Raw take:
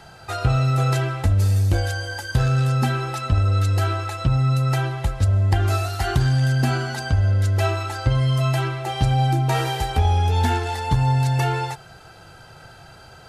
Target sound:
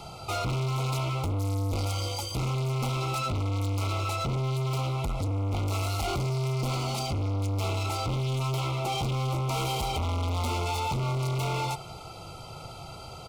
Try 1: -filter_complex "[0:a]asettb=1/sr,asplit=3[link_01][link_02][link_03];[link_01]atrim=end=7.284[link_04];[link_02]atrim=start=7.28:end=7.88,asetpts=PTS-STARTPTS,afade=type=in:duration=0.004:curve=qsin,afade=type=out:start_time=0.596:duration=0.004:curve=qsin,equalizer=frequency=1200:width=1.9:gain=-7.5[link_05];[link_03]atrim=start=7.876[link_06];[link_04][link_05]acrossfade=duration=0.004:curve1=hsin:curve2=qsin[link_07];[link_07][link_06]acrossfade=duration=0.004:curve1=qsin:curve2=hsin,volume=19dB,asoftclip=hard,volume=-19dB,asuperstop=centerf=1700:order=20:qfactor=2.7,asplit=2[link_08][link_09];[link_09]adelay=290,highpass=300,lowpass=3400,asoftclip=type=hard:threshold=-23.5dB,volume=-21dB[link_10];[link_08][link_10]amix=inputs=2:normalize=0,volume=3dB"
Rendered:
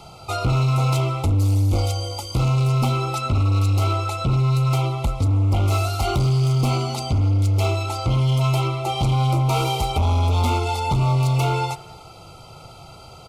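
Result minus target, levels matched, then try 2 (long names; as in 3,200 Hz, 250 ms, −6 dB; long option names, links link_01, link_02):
gain into a clipping stage and back: distortion −7 dB
-filter_complex "[0:a]asettb=1/sr,asplit=3[link_01][link_02][link_03];[link_01]atrim=end=7.284[link_04];[link_02]atrim=start=7.28:end=7.88,asetpts=PTS-STARTPTS,afade=type=in:duration=0.004:curve=qsin,afade=type=out:start_time=0.596:duration=0.004:curve=qsin,equalizer=frequency=1200:width=1.9:gain=-7.5[link_05];[link_03]atrim=start=7.876[link_06];[link_04][link_05]acrossfade=duration=0.004:curve1=hsin:curve2=qsin[link_07];[link_07][link_06]acrossfade=duration=0.004:curve1=qsin:curve2=hsin,volume=30.5dB,asoftclip=hard,volume=-30.5dB,asuperstop=centerf=1700:order=20:qfactor=2.7,asplit=2[link_08][link_09];[link_09]adelay=290,highpass=300,lowpass=3400,asoftclip=type=hard:threshold=-23.5dB,volume=-21dB[link_10];[link_08][link_10]amix=inputs=2:normalize=0,volume=3dB"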